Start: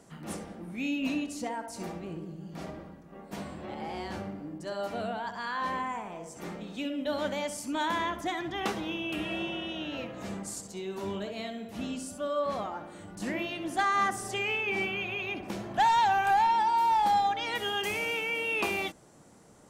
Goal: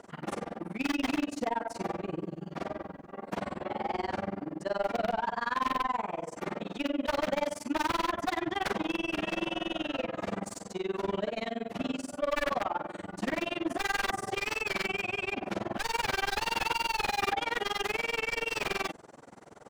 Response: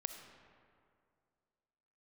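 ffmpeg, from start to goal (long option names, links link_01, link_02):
-filter_complex "[0:a]aeval=exprs='(mod(17.8*val(0)+1,2)-1)/17.8':channel_layout=same,asplit=2[link_01][link_02];[link_02]highpass=frequency=720:poles=1,volume=14dB,asoftclip=type=tanh:threshold=-25dB[link_03];[link_01][link_03]amix=inputs=2:normalize=0,lowpass=frequency=1300:poles=1,volume=-6dB,tremolo=f=21:d=1,volume=6.5dB"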